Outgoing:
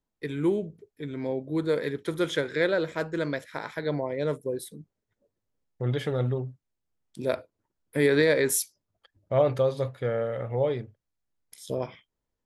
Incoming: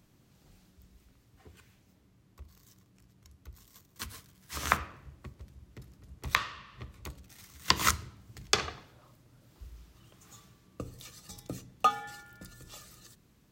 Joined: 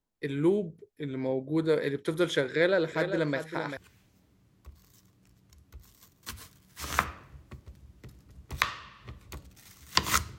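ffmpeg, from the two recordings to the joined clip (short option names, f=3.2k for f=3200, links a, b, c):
-filter_complex "[0:a]asettb=1/sr,asplit=3[a][b][c];[a]atrim=end=2.454[d];[b]atrim=start=2.45:end=3.77,asetpts=PTS-STARTPTS,afade=t=in:d=0.004:c=qsin,afade=t=out:st=1.316:d=0.004:c=qsin,aecho=1:1:393:0.376,atrim=end_sample=58212[e];[c]atrim=start=3.766[f];[d][e]acrossfade=d=0.004:c1=hsin:c2=qsin[g];[g][f]acrossfade=d=0.004:c1=qsin:c2=hsin,apad=whole_dur=10.38,atrim=end=10.38,atrim=end=3.772[h];[1:a]atrim=start=1.498:end=8.11[i];[h][i]acrossfade=d=0.004:c1=hsin:c2=hsin"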